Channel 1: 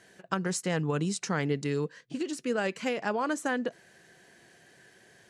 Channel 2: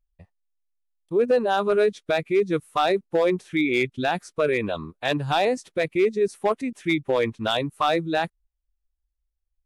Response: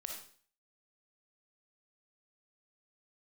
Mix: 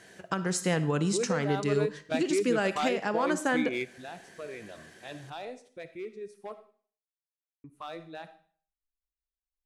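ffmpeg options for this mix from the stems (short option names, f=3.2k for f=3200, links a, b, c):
-filter_complex "[0:a]volume=1.5dB,asplit=3[a][b][c];[b]volume=-4.5dB[d];[1:a]volume=-8.5dB,asplit=3[e][f][g];[e]atrim=end=6.57,asetpts=PTS-STARTPTS,afade=t=out:st=6.566:d=0.004:c=hsin[h];[f]atrim=start=6.57:end=7.64,asetpts=PTS-STARTPTS,volume=0[i];[g]atrim=start=7.64,asetpts=PTS-STARTPTS,afade=t=in:d=0.004:c=hsin[j];[h][i][j]concat=n=3:v=0:a=1,asplit=2[k][l];[l]volume=-16.5dB[m];[c]apad=whole_len=425890[n];[k][n]sidechaingate=range=-14dB:threshold=-46dB:ratio=16:detection=peak[o];[2:a]atrim=start_sample=2205[p];[d][m]amix=inputs=2:normalize=0[q];[q][p]afir=irnorm=-1:irlink=0[r];[a][o][r]amix=inputs=3:normalize=0,alimiter=limit=-16.5dB:level=0:latency=1:release=475"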